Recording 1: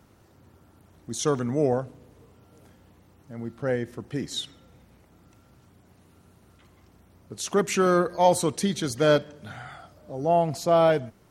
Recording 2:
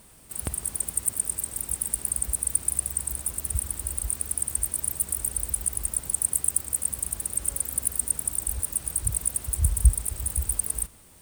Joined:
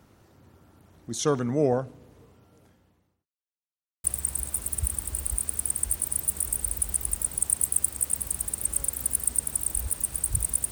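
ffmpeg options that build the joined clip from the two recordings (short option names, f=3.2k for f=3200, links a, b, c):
-filter_complex "[0:a]apad=whole_dur=10.71,atrim=end=10.71,asplit=2[a][b];[a]atrim=end=3.26,asetpts=PTS-STARTPTS,afade=t=out:st=2.19:d=1.07[c];[b]atrim=start=3.26:end=4.04,asetpts=PTS-STARTPTS,volume=0[d];[1:a]atrim=start=2.76:end=9.43,asetpts=PTS-STARTPTS,afade=t=in:d=0.004:c=hsin[e];[c][d][e]concat=n=3:v=0:a=1"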